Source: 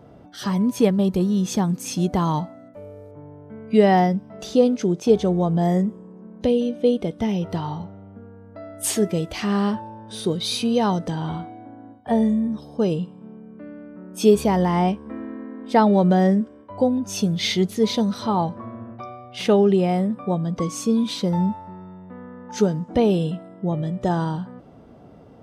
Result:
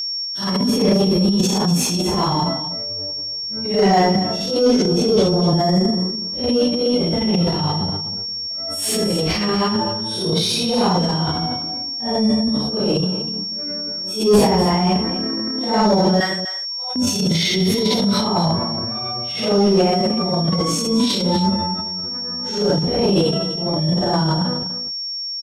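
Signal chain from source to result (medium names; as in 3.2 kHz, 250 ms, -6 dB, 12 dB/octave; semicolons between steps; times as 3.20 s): phase randomisation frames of 200 ms; 16.20–16.96 s: high-pass 1 kHz 24 dB/octave; gate -39 dBFS, range -38 dB; in parallel at +2 dB: compression, threshold -27 dBFS, peak gain reduction 20 dB; on the sum: transient shaper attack -9 dB, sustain +10 dB; whistle 5.5 kHz -22 dBFS; saturation -6 dBFS, distortion -20 dB; on a send: delay 247 ms -12 dB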